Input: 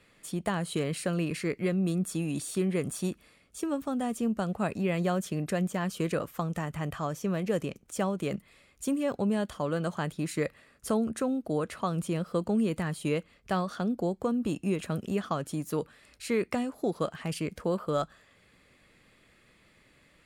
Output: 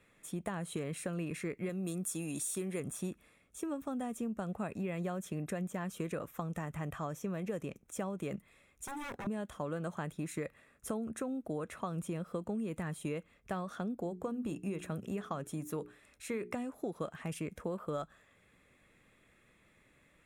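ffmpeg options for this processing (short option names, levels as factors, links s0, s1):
-filter_complex "[0:a]asettb=1/sr,asplit=3[s0][s1][s2];[s0]atrim=end=1.694[s3];[s1]atrim=start=1.69:end=2.8,asetpts=PTS-STARTPTS,afade=t=in:d=0.004:c=qsin,afade=t=out:st=1.106:d=0.004:c=qsin,bass=f=250:g=-5,treble=f=4000:g=9[s4];[s2]atrim=start=2.796[s5];[s3][s4]acrossfade=d=0.004:c1=hsin:c2=qsin[s6];[s6][s5]acrossfade=d=0.004:c1=qsin:c2=hsin,asettb=1/sr,asplit=3[s7][s8][s9];[s7]atrim=end=8.844[s10];[s8]atrim=start=8.84:end=9.27,asetpts=PTS-STARTPTS,afade=t=in:d=0.004:c=qsin,afade=t=out:st=0.426:d=0.004:c=qsin,aeval=exprs='0.0251*(abs(mod(val(0)/0.0251+3,4)-2)-1)':c=same[s11];[s9]atrim=start=9.266[s12];[s10][s11]acrossfade=d=0.004:c1=hsin:c2=qsin[s13];[s13][s12]acrossfade=d=0.004:c1=qsin:c2=hsin,asettb=1/sr,asplit=3[s14][s15][s16];[s14]atrim=end=13.994[s17];[s15]atrim=start=13.99:end=16.53,asetpts=PTS-STARTPTS,afade=t=in:d=0.004:c=qsin,afade=t=out:st=2.536:d=0.004:c=qsin,bandreject=f=60:t=h:w=6,bandreject=f=120:t=h:w=6,bandreject=f=180:t=h:w=6,bandreject=f=240:t=h:w=6,bandreject=f=300:t=h:w=6,bandreject=f=360:t=h:w=6,bandreject=f=420:t=h:w=6[s18];[s16]atrim=start=16.526[s19];[s17][s18]acrossfade=d=0.004:c1=hsin:c2=qsin[s20];[s20][s19]acrossfade=d=0.004:c1=qsin:c2=hsin,equalizer=f=4600:w=4.5:g=-14,bandreject=f=3000:w=12,acompressor=threshold=0.0355:ratio=6,volume=0.596"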